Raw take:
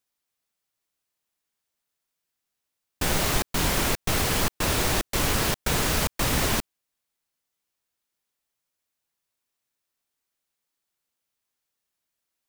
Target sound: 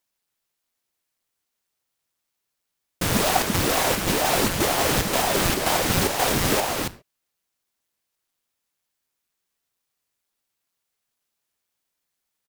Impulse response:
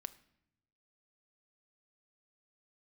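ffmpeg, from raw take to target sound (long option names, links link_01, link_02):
-filter_complex "[0:a]asplit=2[link_01][link_02];[link_02]asetrate=42336,aresample=44100[link_03];[1:a]atrim=start_sample=2205,afade=type=out:start_time=0.19:duration=0.01,atrim=end_sample=8820[link_04];[link_03][link_04]afir=irnorm=-1:irlink=0,volume=0.5dB[link_05];[link_01][link_05]amix=inputs=2:normalize=0,aeval=exprs='val(0)*sin(2*PI*430*n/s+430*0.8/2.1*sin(2*PI*2.1*n/s))':channel_layout=same,volume=4dB"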